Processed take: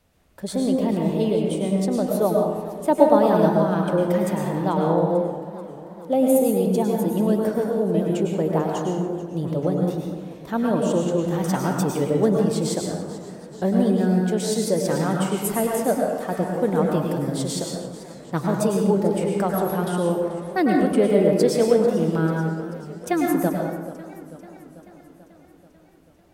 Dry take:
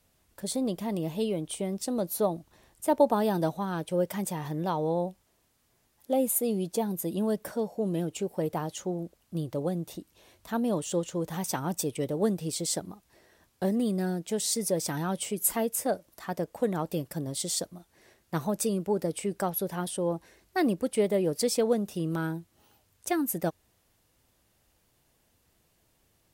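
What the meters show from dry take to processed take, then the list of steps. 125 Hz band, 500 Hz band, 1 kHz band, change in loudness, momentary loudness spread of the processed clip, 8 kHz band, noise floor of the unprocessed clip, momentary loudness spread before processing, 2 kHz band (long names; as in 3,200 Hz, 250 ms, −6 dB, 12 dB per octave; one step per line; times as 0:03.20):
+9.5 dB, +9.5 dB, +8.5 dB, +8.5 dB, 12 LU, −0.5 dB, −70 dBFS, 8 LU, +7.5 dB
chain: high-shelf EQ 4,100 Hz −10 dB
dense smooth reverb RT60 1.2 s, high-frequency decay 0.5×, pre-delay 90 ms, DRR −0.5 dB
feedback echo with a swinging delay time 439 ms, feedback 63%, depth 115 cents, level −16.5 dB
level +5.5 dB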